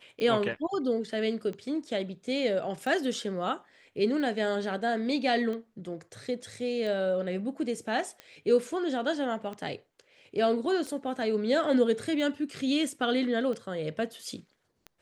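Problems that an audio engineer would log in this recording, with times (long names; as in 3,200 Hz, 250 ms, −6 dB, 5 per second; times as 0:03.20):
scratch tick 45 rpm −26 dBFS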